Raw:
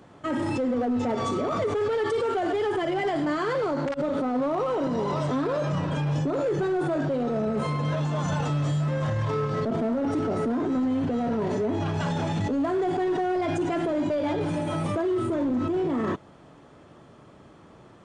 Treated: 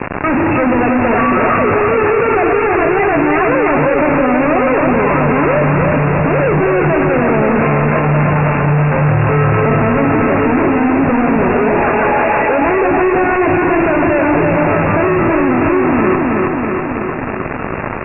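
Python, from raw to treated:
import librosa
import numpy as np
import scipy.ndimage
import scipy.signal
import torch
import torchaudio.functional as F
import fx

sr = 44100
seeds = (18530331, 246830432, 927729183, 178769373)

y = fx.peak_eq(x, sr, hz=1700.0, db=15.0, octaves=1.1, at=(1.11, 1.58))
y = fx.highpass(y, sr, hz=420.0, slope=24, at=(11.54, 12.62))
y = fx.fuzz(y, sr, gain_db=45.0, gate_db=-47.0)
y = fx.brickwall_lowpass(y, sr, high_hz=2800.0)
y = fx.echo_feedback(y, sr, ms=322, feedback_pct=52, wet_db=-3.5)
y = fx.env_flatten(y, sr, amount_pct=50)
y = y * librosa.db_to_amplitude(-1.5)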